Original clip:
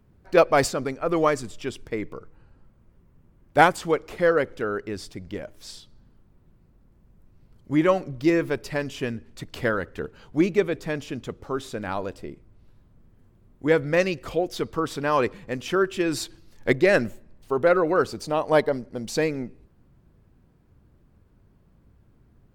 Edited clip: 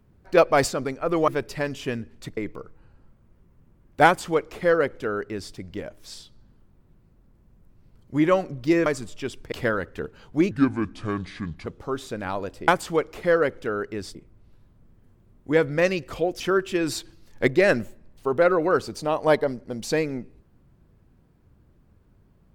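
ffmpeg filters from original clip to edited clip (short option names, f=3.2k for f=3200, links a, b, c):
-filter_complex "[0:a]asplit=10[a][b][c][d][e][f][g][h][i][j];[a]atrim=end=1.282[k];[b]atrim=start=8.428:end=9.522[l];[c]atrim=start=1.938:end=8.432[m];[d]atrim=start=1.278:end=1.942[n];[e]atrim=start=9.518:end=10.514[o];[f]atrim=start=10.51:end=11.28,asetpts=PTS-STARTPTS,asetrate=29547,aresample=44100,atrim=end_sample=50682,asetpts=PTS-STARTPTS[p];[g]atrim=start=11.276:end=12.302[q];[h]atrim=start=3.628:end=5.102[r];[i]atrim=start=12.298:end=14.552[s];[j]atrim=start=15.648[t];[k][l]acrossfade=d=0.004:c1=hsin:c2=hsin[u];[u][m]acrossfade=d=0.004:c1=hsin:c2=hsin[v];[v][n]acrossfade=d=0.004:c1=hsin:c2=hsin[w];[w][o]acrossfade=d=0.004:c1=hsin:c2=hsin[x];[x][p]acrossfade=d=0.004:c1=hsin:c2=hsin[y];[y][q]acrossfade=d=0.004:c1=hsin:c2=hsin[z];[z][r]acrossfade=d=0.004:c1=hsin:c2=hsin[aa];[aa][s]acrossfade=d=0.004:c1=hsin:c2=hsin[ab];[ab][t]acrossfade=d=0.004:c1=hsin:c2=hsin"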